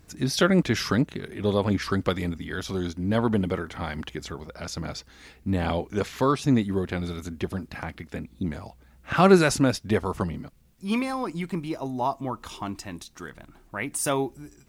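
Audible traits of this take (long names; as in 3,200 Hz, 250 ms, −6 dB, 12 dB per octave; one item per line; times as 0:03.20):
tremolo triangle 0.58 Hz, depth 30%
a quantiser's noise floor 12 bits, dither none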